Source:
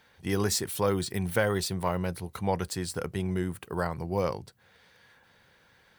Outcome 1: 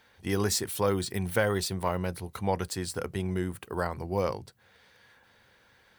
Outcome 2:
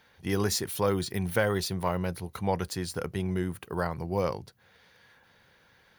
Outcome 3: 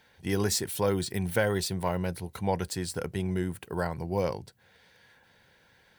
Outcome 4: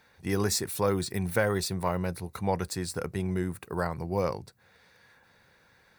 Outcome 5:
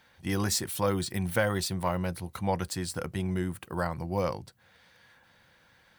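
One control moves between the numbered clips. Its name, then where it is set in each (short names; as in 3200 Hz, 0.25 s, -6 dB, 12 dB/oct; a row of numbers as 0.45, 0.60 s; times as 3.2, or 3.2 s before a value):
notch, frequency: 160, 8000, 1200, 3100, 420 Hz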